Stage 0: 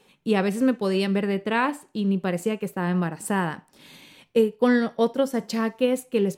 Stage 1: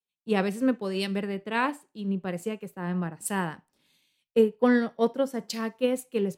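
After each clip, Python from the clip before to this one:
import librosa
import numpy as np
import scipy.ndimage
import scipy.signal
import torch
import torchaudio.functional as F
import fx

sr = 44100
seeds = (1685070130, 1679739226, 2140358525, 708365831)

y = fx.band_widen(x, sr, depth_pct=100)
y = y * librosa.db_to_amplitude(-4.5)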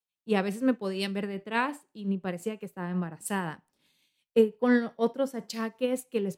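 y = x * (1.0 - 0.43 / 2.0 + 0.43 / 2.0 * np.cos(2.0 * np.pi * 5.7 * (np.arange(len(x)) / sr)))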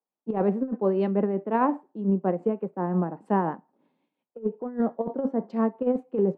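y = scipy.signal.sosfilt(scipy.signal.cheby1(2, 1.0, [230.0, 880.0], 'bandpass', fs=sr, output='sos'), x)
y = fx.over_compress(y, sr, threshold_db=-30.0, ratio=-0.5)
y = y * librosa.db_to_amplitude(7.5)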